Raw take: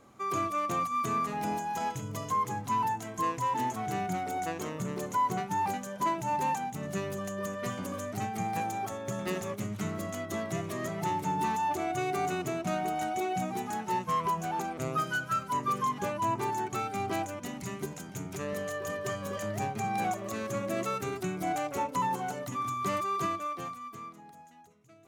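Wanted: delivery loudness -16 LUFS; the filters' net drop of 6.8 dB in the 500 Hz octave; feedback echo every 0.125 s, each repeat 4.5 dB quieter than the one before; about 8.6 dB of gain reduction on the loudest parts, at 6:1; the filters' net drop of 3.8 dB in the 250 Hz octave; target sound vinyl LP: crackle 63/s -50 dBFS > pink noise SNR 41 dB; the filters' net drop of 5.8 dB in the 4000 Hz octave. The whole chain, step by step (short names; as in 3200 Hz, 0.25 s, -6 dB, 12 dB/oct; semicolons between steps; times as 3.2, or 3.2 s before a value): bell 250 Hz -3 dB; bell 500 Hz -8.5 dB; bell 4000 Hz -8 dB; compressor 6:1, threshold -37 dBFS; feedback echo 0.125 s, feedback 60%, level -4.5 dB; crackle 63/s -50 dBFS; pink noise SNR 41 dB; gain +23 dB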